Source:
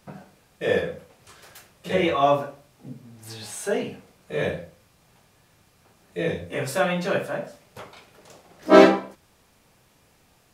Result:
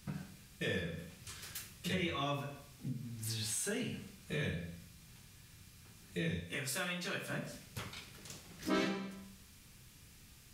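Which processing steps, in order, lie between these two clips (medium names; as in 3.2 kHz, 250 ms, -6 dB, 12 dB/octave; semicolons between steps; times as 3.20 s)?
amplifier tone stack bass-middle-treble 6-0-2; Schroeder reverb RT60 0.61 s, combs from 32 ms, DRR 11.5 dB; compression 3:1, threshold -54 dBFS, peak gain reduction 17 dB; 6.40–7.30 s: bass shelf 230 Hz -10.5 dB; trim +17.5 dB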